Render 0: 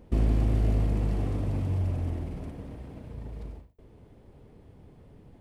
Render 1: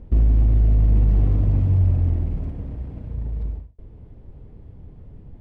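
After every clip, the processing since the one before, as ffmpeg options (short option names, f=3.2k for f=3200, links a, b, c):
-af "aemphasis=mode=reproduction:type=bsi,alimiter=limit=-9.5dB:level=0:latency=1:release=47"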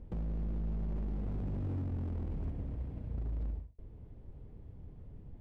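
-af "acompressor=threshold=-21dB:ratio=8,aeval=exprs='0.0708*(abs(mod(val(0)/0.0708+3,4)-2)-1)':c=same,volume=-8dB"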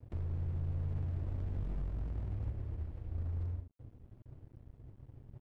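-af "afreqshift=-140,aeval=exprs='sgn(val(0))*max(abs(val(0))-0.00211,0)':c=same"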